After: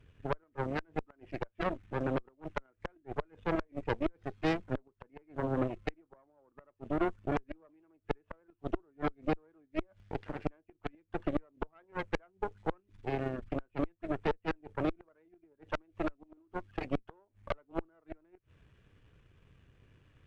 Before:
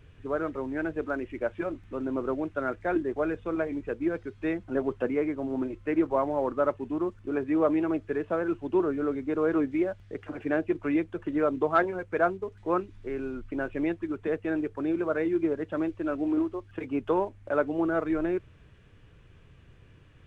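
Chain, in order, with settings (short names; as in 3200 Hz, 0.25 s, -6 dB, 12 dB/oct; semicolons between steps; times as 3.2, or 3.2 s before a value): flipped gate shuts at -20 dBFS, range -31 dB; added harmonics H 2 -8 dB, 3 -17 dB, 6 -17 dB, 7 -33 dB, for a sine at -19 dBFS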